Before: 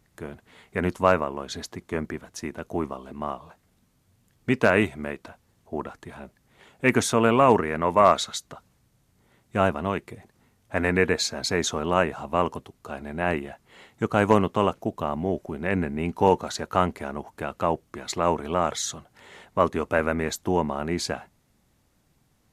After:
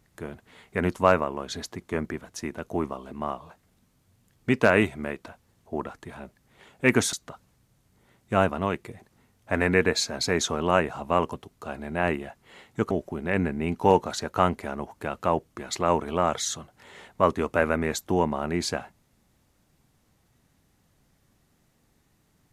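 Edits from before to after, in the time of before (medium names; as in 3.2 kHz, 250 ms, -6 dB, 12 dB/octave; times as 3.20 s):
7.13–8.36 s: delete
14.14–15.28 s: delete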